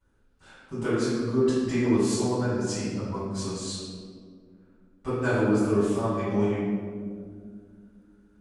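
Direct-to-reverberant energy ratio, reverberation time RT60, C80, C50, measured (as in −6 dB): −17.0 dB, 2.1 s, −0.5 dB, −3.0 dB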